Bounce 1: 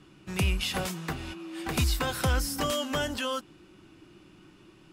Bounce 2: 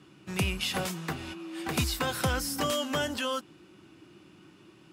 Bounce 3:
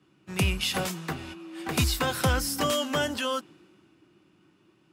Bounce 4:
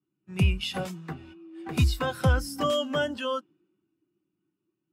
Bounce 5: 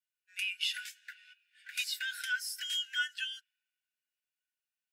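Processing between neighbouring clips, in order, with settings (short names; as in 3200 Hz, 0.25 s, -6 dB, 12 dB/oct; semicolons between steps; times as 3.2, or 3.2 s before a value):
HPF 94 Hz 12 dB/oct
three-band expander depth 40%; gain +2.5 dB
spectral expander 1.5:1
brick-wall FIR high-pass 1400 Hz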